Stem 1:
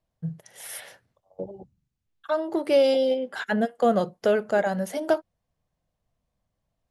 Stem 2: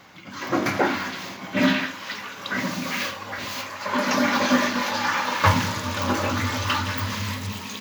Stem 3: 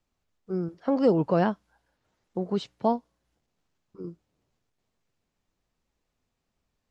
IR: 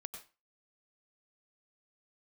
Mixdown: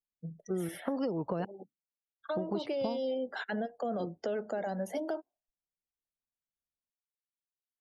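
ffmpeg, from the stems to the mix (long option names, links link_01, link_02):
-filter_complex "[0:a]highpass=frequency=200:width=0.5412,highpass=frequency=200:width=1.3066,equalizer=frequency=1100:width_type=o:width=1.4:gain=-2.5,volume=-2dB[link_01];[2:a]acompressor=threshold=-24dB:ratio=6,volume=2dB,asplit=3[link_02][link_03][link_04];[link_02]atrim=end=1.45,asetpts=PTS-STARTPTS,afade=type=out:start_time=1.446:duration=0.004:curve=hsin[link_05];[link_03]atrim=start=1.45:end=2.2,asetpts=PTS-STARTPTS,volume=0[link_06];[link_04]atrim=start=2.2,asetpts=PTS-STARTPTS,afade=type=in:duration=0.004:curve=hsin[link_07];[link_05][link_06][link_07]concat=n=3:v=0:a=1[link_08];[link_01]adynamicequalizer=threshold=0.0141:dfrequency=760:dqfactor=2:tfrequency=760:tqfactor=2:attack=5:release=100:ratio=0.375:range=2.5:mode=boostabove:tftype=bell,alimiter=limit=-21dB:level=0:latency=1:release=29,volume=0dB[link_09];[link_08][link_09]amix=inputs=2:normalize=0,afftdn=noise_reduction=29:noise_floor=-48,acrossover=split=380|3700[link_10][link_11][link_12];[link_10]acompressor=threshold=-36dB:ratio=4[link_13];[link_11]acompressor=threshold=-36dB:ratio=4[link_14];[link_12]acompressor=threshold=-51dB:ratio=4[link_15];[link_13][link_14][link_15]amix=inputs=3:normalize=0"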